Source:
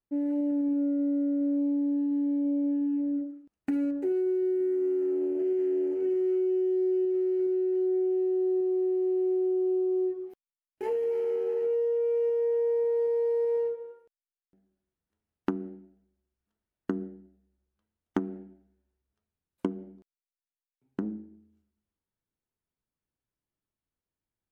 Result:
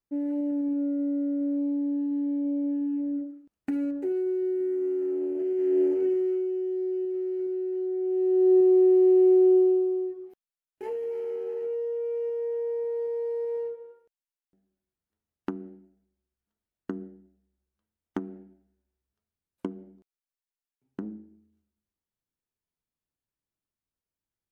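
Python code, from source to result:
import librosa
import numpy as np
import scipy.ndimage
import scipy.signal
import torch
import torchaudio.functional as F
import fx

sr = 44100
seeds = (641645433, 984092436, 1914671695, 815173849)

y = fx.gain(x, sr, db=fx.line((5.53, -0.5), (5.81, 6.0), (6.53, -3.0), (7.97, -3.0), (8.53, 8.5), (9.56, 8.5), (10.08, -3.5)))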